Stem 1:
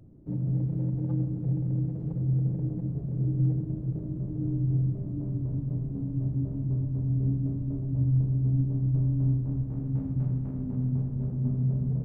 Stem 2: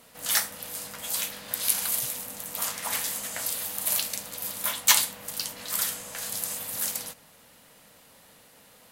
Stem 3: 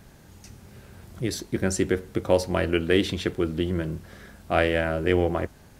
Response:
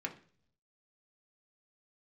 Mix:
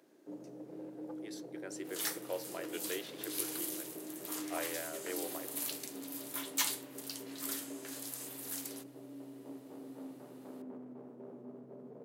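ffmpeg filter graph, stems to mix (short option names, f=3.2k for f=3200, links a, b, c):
-filter_complex "[0:a]alimiter=limit=-23.5dB:level=0:latency=1,volume=0dB[a];[1:a]adelay=1700,volume=-12dB[b];[2:a]volume=-17.5dB[c];[a][b][c]amix=inputs=3:normalize=0,highpass=f=360:w=0.5412,highpass=f=360:w=1.3066,asoftclip=type=tanh:threshold=-20.5dB"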